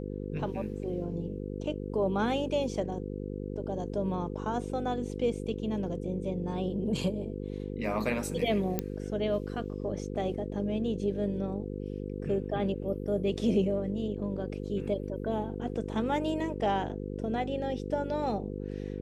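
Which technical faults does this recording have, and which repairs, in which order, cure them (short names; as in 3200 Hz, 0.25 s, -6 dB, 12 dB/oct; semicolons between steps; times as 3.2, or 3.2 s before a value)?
buzz 50 Hz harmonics 10 -37 dBFS
8.79 pop -14 dBFS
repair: de-click; de-hum 50 Hz, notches 10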